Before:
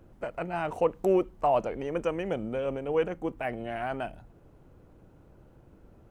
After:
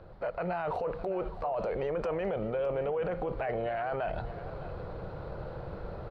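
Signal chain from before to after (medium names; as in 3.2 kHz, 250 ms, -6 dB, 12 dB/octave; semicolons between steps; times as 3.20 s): FFT filter 180 Hz 0 dB, 260 Hz -11 dB, 500 Hz +7 dB, 890 Hz +5 dB, 1.3 kHz +6 dB, 3 kHz -1 dB, 4.3 kHz +8 dB, 6.5 kHz -19 dB; level rider gain up to 11 dB; peak limiter -29 dBFS, peak gain reduction 27 dB; delay 609 ms -15 dB; trim +3.5 dB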